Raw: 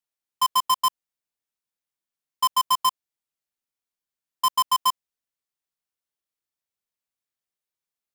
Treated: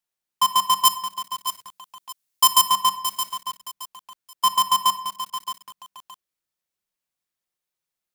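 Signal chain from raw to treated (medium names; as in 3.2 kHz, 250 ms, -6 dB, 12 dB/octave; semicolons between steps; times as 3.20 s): 0.85–2.67 s: treble shelf 3.4 kHz +10.5 dB; simulated room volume 2200 m³, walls furnished, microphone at 0.95 m; bit-crushed delay 620 ms, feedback 35%, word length 6-bit, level -10 dB; trim +3 dB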